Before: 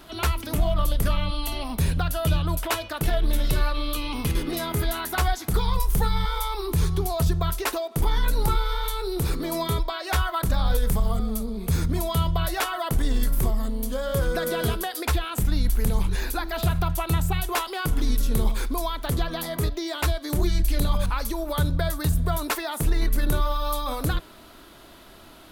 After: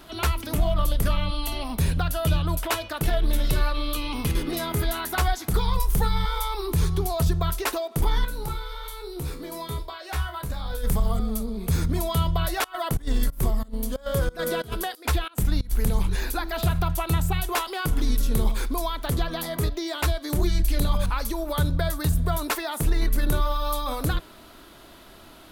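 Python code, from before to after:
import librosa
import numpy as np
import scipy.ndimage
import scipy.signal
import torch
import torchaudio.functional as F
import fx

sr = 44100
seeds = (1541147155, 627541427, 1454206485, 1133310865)

y = fx.comb_fb(x, sr, f0_hz=71.0, decay_s=0.33, harmonics='all', damping=0.0, mix_pct=80, at=(8.24, 10.83), fade=0.02)
y = fx.volume_shaper(y, sr, bpm=91, per_beat=2, depth_db=-23, release_ms=100.0, shape='slow start', at=(12.64, 15.86))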